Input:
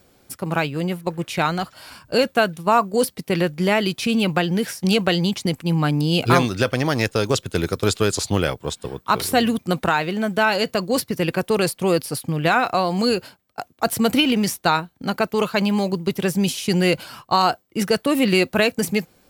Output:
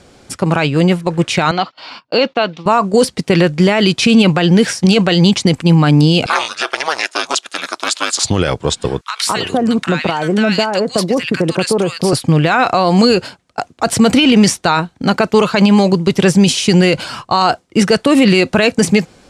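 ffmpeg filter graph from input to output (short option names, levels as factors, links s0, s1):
-filter_complex "[0:a]asettb=1/sr,asplit=3[s0][s1][s2];[s0]atrim=end=1.514[s3];[s1]atrim=start=1.51:end=2.66,asetpts=PTS-STARTPTS,afade=t=in:d=0.004:c=qsin,afade=t=out:st=1.146:d=0.004:c=qsin,agate=range=0.0891:threshold=0.00631:ratio=16:release=100:detection=peak,highpass=310,equalizer=f=400:t=q:w=4:g=-5,equalizer=f=600:t=q:w=4:g=-4,equalizer=f=1600:t=q:w=4:g=-9,lowpass=f=4500:w=0.5412,lowpass=f=4500:w=1.3066[s4];[s2]atrim=start=2.656[s5];[s3][s4]acrossfade=d=0.004:c1=hsin:c2=qsin[s6];[s6][s5]acrossfade=d=0.004:c1=qsin:c2=hsin,asettb=1/sr,asplit=3[s7][s8][s9];[s7]atrim=end=6.264[s10];[s8]atrim=start=6.26:end=8.23,asetpts=PTS-STARTPTS,afade=t=in:d=0.004:c=qsin,afade=t=out:st=1.966:d=0.004:c=qsin,highpass=f=680:w=0.5412,highpass=f=680:w=1.3066,equalizer=f=11000:w=2.5:g=5,aeval=exprs='val(0)*sin(2*PI*150*n/s)':c=same[s11];[s9]atrim=start=8.226[s12];[s10][s11]acrossfade=d=0.004:c1=hsin:c2=qsin[s13];[s13][s12]acrossfade=d=0.004:c1=qsin:c2=hsin,asettb=1/sr,asplit=3[s14][s15][s16];[s14]atrim=end=9.014[s17];[s15]atrim=start=9.01:end=12.13,asetpts=PTS-STARTPTS,afade=t=in:d=0.004:c=qsin,afade=t=out:st=3.116:d=0.004:c=qsin,acompressor=threshold=0.0891:ratio=12:attack=3.2:release=140:knee=1:detection=peak,highpass=130,acrossover=split=1300[s18][s19];[s18]adelay=210[s20];[s20][s19]amix=inputs=2:normalize=0,atrim=end_sample=137592[s21];[s16]atrim=start=12.126[s22];[s17][s21]acrossfade=d=0.004:c1=hsin:c2=qsin[s23];[s23][s22]acrossfade=d=0.004:c1=qsin:c2=hsin,lowpass=f=8600:w=0.5412,lowpass=f=8600:w=1.3066,alimiter=level_in=4.73:limit=0.891:release=50:level=0:latency=1,volume=0.891"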